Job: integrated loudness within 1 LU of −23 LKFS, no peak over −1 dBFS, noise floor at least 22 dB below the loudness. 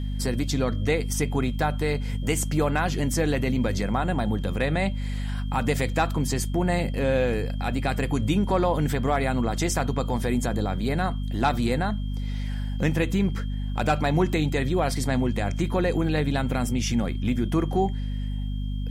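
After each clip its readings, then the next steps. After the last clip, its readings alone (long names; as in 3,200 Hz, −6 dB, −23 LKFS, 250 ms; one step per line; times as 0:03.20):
mains hum 50 Hz; hum harmonics up to 250 Hz; level of the hum −26 dBFS; interfering tone 3,200 Hz; level of the tone −49 dBFS; integrated loudness −26.0 LKFS; sample peak −10.0 dBFS; target loudness −23.0 LKFS
→ mains-hum notches 50/100/150/200/250 Hz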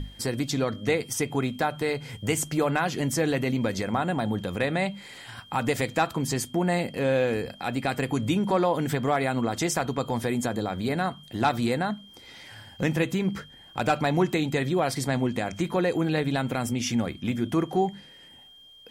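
mains hum none found; interfering tone 3,200 Hz; level of the tone −49 dBFS
→ notch filter 3,200 Hz, Q 30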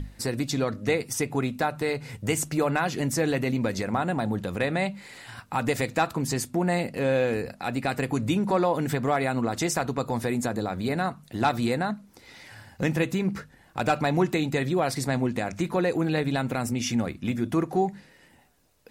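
interfering tone none found; integrated loudness −27.0 LKFS; sample peak −11.0 dBFS; target loudness −23.0 LKFS
→ level +4 dB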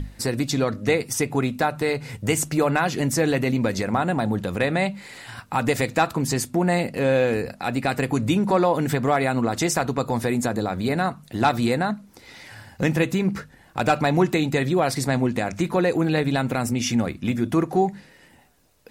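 integrated loudness −23.0 LKFS; sample peak −7.0 dBFS; background noise floor −53 dBFS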